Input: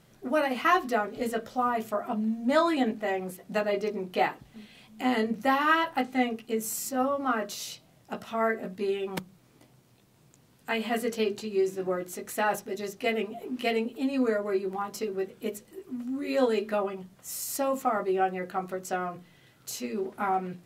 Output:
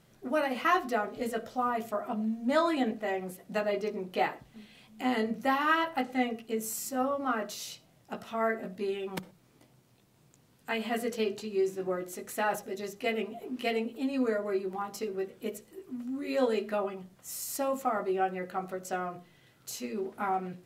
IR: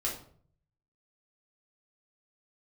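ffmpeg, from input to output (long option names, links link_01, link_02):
-filter_complex "[0:a]asplit=2[link_01][link_02];[link_02]equalizer=frequency=570:width_type=o:width=1.7:gain=8.5[link_03];[1:a]atrim=start_sample=2205,atrim=end_sample=3528,adelay=55[link_04];[link_03][link_04]afir=irnorm=-1:irlink=0,volume=-26dB[link_05];[link_01][link_05]amix=inputs=2:normalize=0,volume=-3dB"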